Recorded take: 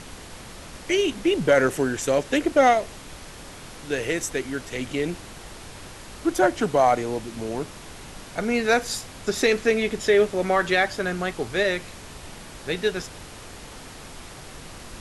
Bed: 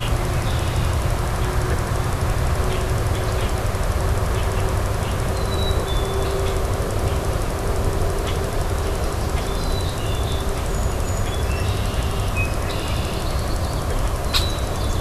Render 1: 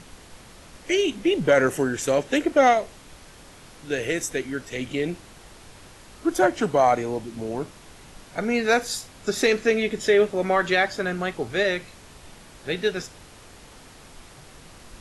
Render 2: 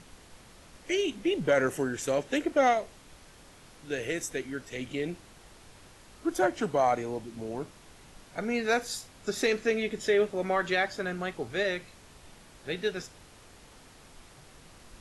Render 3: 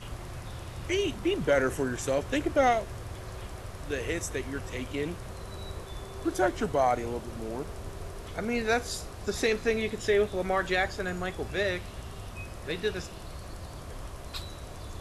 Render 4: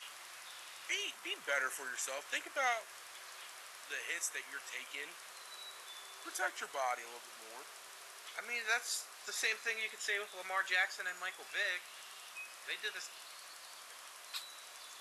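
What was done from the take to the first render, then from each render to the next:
noise print and reduce 6 dB
gain -6.5 dB
add bed -19 dB
HPF 1500 Hz 12 dB/oct; dynamic EQ 3900 Hz, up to -4 dB, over -48 dBFS, Q 0.93

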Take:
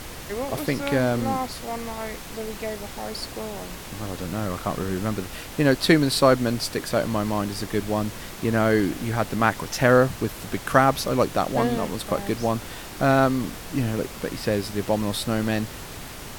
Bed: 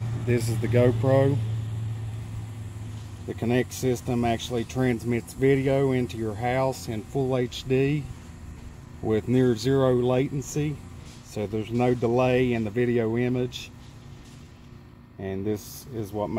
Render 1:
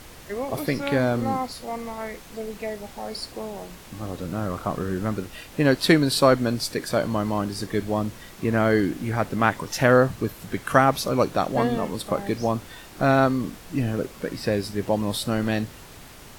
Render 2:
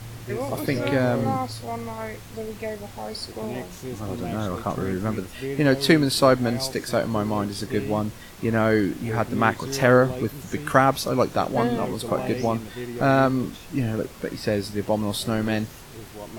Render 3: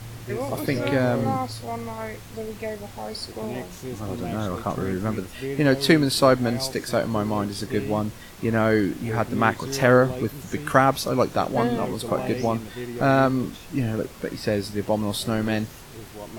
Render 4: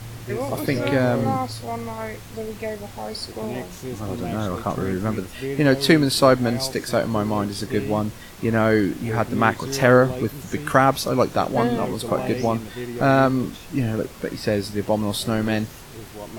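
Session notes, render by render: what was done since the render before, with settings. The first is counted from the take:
noise print and reduce 7 dB
add bed -10 dB
nothing audible
gain +2 dB; limiter -3 dBFS, peak gain reduction 1.5 dB

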